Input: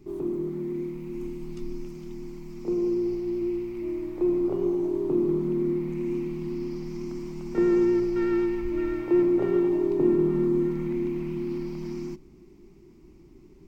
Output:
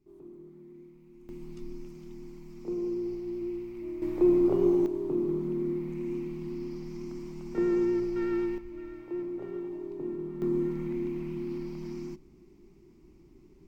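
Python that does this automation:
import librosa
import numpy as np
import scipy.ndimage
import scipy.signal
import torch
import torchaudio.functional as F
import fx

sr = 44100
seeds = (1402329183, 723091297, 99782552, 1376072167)

y = fx.gain(x, sr, db=fx.steps((0.0, -19.0), (1.29, -6.5), (4.02, 2.0), (4.86, -5.0), (8.58, -14.0), (10.42, -4.5)))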